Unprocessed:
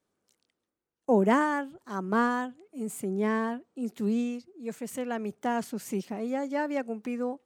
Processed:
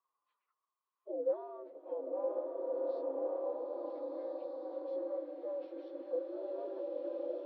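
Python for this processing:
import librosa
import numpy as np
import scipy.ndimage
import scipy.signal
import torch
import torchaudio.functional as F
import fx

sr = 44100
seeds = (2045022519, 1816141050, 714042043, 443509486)

p1 = fx.partial_stretch(x, sr, pct=80)
p2 = scipy.signal.sosfilt(scipy.signal.butter(4, 4500.0, 'lowpass', fs=sr, output='sos'), p1)
p3 = fx.peak_eq(p2, sr, hz=140.0, db=-15.0, octaves=1.3)
p4 = fx.hum_notches(p3, sr, base_hz=60, count=5)
p5 = fx.over_compress(p4, sr, threshold_db=-41.0, ratio=-1.0)
p6 = p4 + F.gain(torch.from_numpy(p5), 1.5).numpy()
p7 = fx.pitch_keep_formants(p6, sr, semitones=5.5)
p8 = fx.auto_wah(p7, sr, base_hz=510.0, top_hz=1100.0, q=14.0, full_db=-34.5, direction='down')
p9 = p8 + fx.echo_single(p8, sr, ms=971, db=-10.0, dry=0)
p10 = fx.rev_bloom(p9, sr, seeds[0], attack_ms=1600, drr_db=-2.0)
y = F.gain(torch.from_numpy(p10), 2.5).numpy()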